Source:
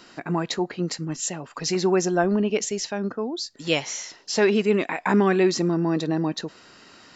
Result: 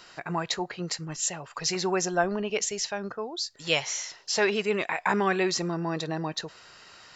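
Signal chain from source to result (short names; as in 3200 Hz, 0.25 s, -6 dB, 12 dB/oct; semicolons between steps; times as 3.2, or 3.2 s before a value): bell 260 Hz -14.5 dB 1.1 oct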